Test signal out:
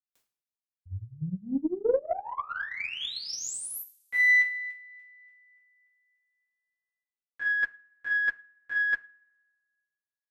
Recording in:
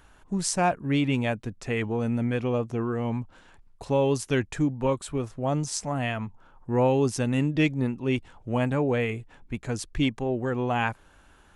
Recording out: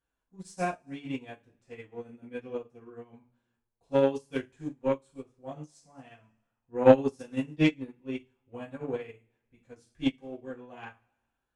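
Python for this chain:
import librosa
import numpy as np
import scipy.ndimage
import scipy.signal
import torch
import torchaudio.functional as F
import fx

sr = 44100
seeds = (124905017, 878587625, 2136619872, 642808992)

y = fx.rev_double_slope(x, sr, seeds[0], early_s=0.38, late_s=1.6, knee_db=-22, drr_db=-7.0)
y = fx.cheby_harmonics(y, sr, harmonics=(3, 6), levels_db=(-17, -39), full_scale_db=0.5)
y = fx.upward_expand(y, sr, threshold_db=-29.0, expansion=2.5)
y = y * librosa.db_to_amplitude(-1.5)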